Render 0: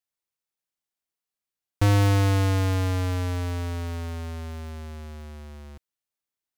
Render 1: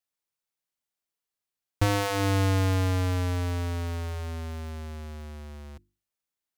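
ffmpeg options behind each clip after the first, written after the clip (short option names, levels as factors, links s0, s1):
-af "bandreject=f=50:t=h:w=6,bandreject=f=100:t=h:w=6,bandreject=f=150:t=h:w=6,bandreject=f=200:t=h:w=6,bandreject=f=250:t=h:w=6,bandreject=f=300:t=h:w=6,bandreject=f=350:t=h:w=6"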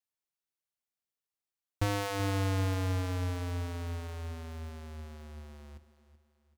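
-af "aecho=1:1:382|764|1146|1528:0.188|0.0753|0.0301|0.0121,volume=0.473"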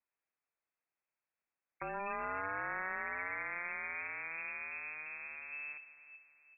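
-af "afftfilt=real='re*lt(hypot(re,im),0.0447)':imag='im*lt(hypot(re,im),0.0447)':win_size=1024:overlap=0.75,lowpass=f=2300:t=q:w=0.5098,lowpass=f=2300:t=q:w=0.6013,lowpass=f=2300:t=q:w=0.9,lowpass=f=2300:t=q:w=2.563,afreqshift=-2700,volume=1.88"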